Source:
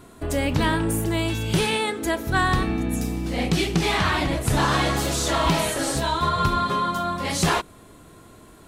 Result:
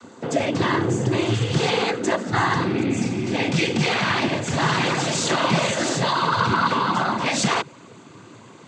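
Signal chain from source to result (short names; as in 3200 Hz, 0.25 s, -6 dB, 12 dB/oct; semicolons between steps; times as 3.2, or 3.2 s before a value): bell 2500 Hz -3.5 dB 0.38 oct, from 2.75 s +5 dB; limiter -16 dBFS, peak gain reduction 5.5 dB; noise vocoder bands 16; gain +4.5 dB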